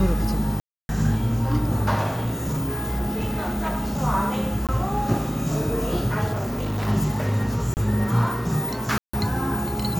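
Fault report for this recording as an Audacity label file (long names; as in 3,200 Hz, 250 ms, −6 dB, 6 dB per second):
0.600000	0.890000	drop-out 291 ms
2.090000	4.010000	clipping −21.5 dBFS
4.670000	4.690000	drop-out 17 ms
6.320000	6.890000	clipping −23.5 dBFS
7.740000	7.770000	drop-out 29 ms
8.980000	9.130000	drop-out 154 ms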